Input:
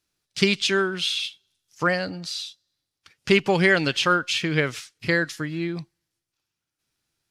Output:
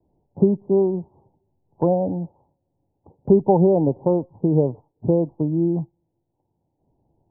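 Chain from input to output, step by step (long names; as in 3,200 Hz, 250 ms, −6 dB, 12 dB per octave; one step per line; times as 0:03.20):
Butterworth low-pass 930 Hz 96 dB per octave
multiband upward and downward compressor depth 40%
level +6.5 dB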